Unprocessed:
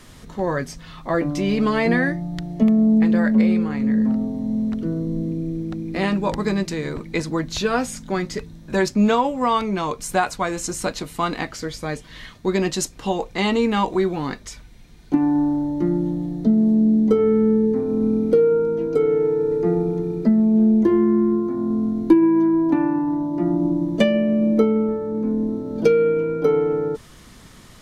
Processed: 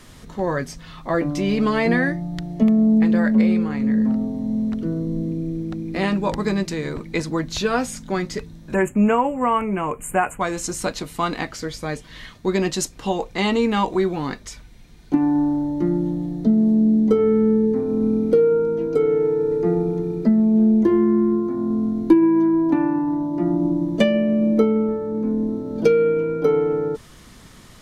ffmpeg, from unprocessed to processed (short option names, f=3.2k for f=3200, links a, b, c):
-filter_complex "[0:a]asettb=1/sr,asplit=3[a][b][c];[a]atrim=end=8.744[d];[b]atrim=start=8.74:end=10.41,asetpts=PTS-STARTPTS,afade=t=in:d=0.004:c=qsin,afade=t=out:st=1.666:d=0.004:c=qsin,asuperstop=centerf=4600:order=12:qfactor=1.1[e];[c]atrim=start=10.406[f];[d][e]acrossfade=d=0.004:c1=hsin:c2=qsin[g];[g][f]acrossfade=d=0.004:c1=qsin:c2=hsin"